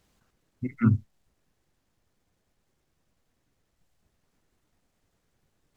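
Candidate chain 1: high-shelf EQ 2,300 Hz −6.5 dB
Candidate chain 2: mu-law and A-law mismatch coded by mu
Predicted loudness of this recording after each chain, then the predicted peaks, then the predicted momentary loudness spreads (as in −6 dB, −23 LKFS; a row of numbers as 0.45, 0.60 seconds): −26.0, −27.0 LKFS; −10.0, −9.5 dBFS; 13, 13 LU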